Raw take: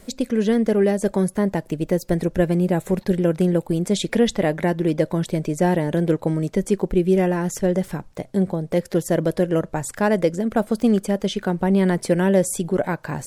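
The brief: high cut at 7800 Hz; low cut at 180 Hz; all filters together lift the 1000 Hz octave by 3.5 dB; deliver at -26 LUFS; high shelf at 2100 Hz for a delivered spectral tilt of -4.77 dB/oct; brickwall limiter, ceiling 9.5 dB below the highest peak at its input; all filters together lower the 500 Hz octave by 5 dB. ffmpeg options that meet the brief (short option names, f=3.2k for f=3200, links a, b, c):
-af "highpass=180,lowpass=7.8k,equalizer=f=500:t=o:g=-8.5,equalizer=f=1k:t=o:g=7,highshelf=f=2.1k:g=6.5,alimiter=limit=-14dB:level=0:latency=1"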